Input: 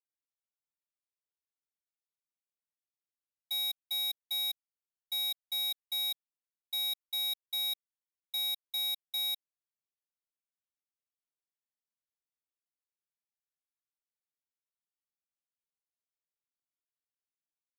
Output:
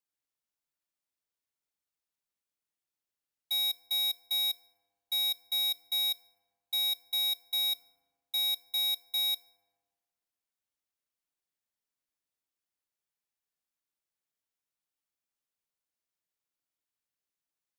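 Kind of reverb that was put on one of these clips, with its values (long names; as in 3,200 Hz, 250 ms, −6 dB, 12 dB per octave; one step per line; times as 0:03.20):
feedback delay network reverb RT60 1.5 s, low-frequency decay 1.25×, high-frequency decay 0.4×, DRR 15 dB
level +3 dB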